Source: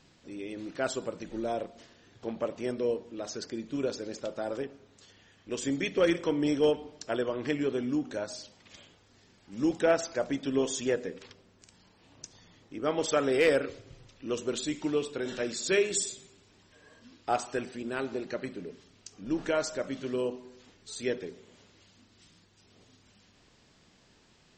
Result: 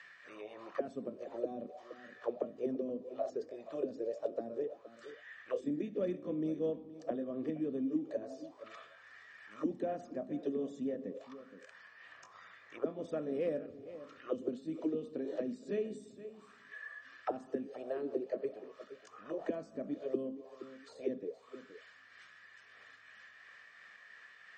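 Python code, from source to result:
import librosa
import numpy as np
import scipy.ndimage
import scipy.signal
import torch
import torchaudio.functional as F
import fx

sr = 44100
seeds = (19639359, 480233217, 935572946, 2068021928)

y = fx.pitch_heads(x, sr, semitones=1.0)
y = fx.high_shelf(y, sr, hz=2300.0, db=8.5)
y = y + 0.43 * np.pad(y, (int(1.7 * sr / 1000.0), 0))[:len(y)]
y = fx.auto_wah(y, sr, base_hz=240.0, top_hz=1900.0, q=5.0, full_db=-28.5, direction='down')
y = y + 10.0 ** (-18.5 / 20.0) * np.pad(y, (int(470 * sr / 1000.0), 0))[:len(y)]
y = fx.band_squash(y, sr, depth_pct=40)
y = F.gain(torch.from_numpy(y), 6.5).numpy()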